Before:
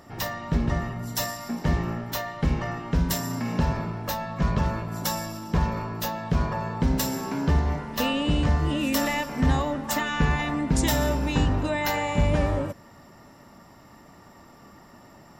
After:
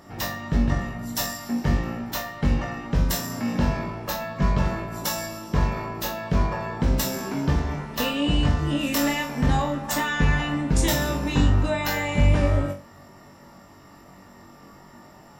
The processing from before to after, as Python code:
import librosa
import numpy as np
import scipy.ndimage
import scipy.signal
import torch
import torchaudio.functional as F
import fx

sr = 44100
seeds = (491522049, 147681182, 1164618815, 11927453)

y = fx.room_flutter(x, sr, wall_m=3.6, rt60_s=0.29)